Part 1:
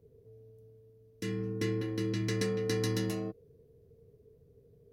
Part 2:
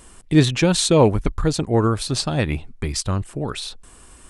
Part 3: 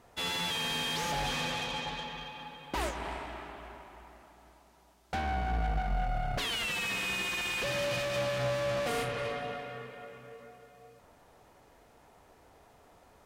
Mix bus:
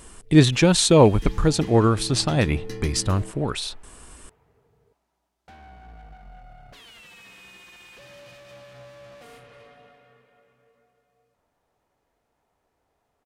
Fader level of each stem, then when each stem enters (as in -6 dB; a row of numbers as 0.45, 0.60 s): -4.0, +0.5, -14.5 dB; 0.00, 0.00, 0.35 s